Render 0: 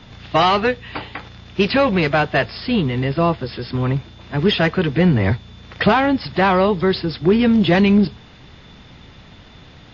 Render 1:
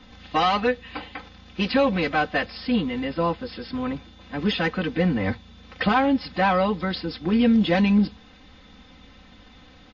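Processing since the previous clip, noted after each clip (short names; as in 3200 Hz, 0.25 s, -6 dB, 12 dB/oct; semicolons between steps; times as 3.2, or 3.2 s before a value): comb 3.9 ms, depth 86%; gain -8 dB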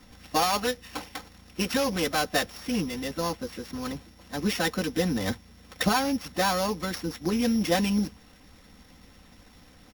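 sample sorter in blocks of 8 samples; harmonic-percussive split harmonic -7 dB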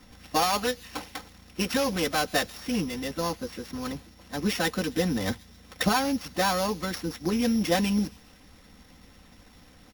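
thin delay 0.134 s, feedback 53%, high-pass 3300 Hz, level -18 dB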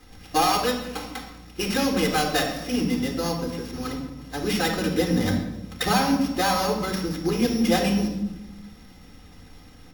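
shoebox room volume 3700 m³, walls furnished, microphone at 3.9 m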